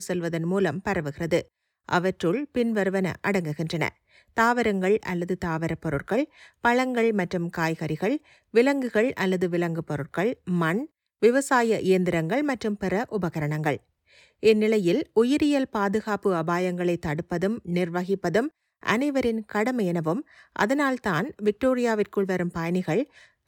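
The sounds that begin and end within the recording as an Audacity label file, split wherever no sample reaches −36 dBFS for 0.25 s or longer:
1.890000	3.890000	sound
4.370000	6.250000	sound
6.640000	8.170000	sound
8.540000	10.850000	sound
11.230000	13.770000	sound
14.430000	18.480000	sound
18.830000	20.210000	sound
20.560000	23.040000	sound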